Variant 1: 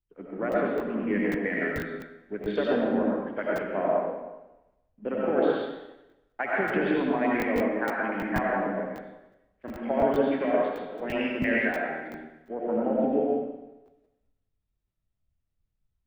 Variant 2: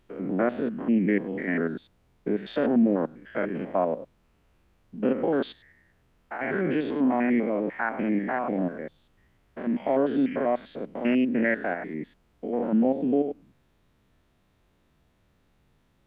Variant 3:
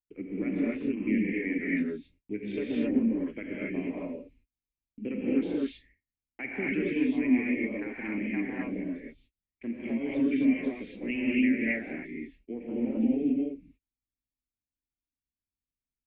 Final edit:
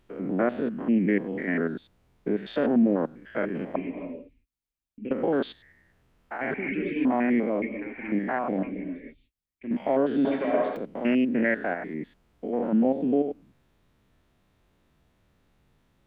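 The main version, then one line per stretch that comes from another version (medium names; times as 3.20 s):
2
3.76–5.11 s: from 3
6.54–7.05 s: from 3
7.62–8.12 s: from 3
8.63–9.71 s: from 3
10.25–10.77 s: from 1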